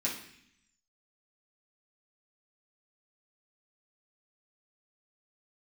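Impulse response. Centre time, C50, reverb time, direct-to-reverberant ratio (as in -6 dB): 30 ms, 6.5 dB, 0.65 s, -7.0 dB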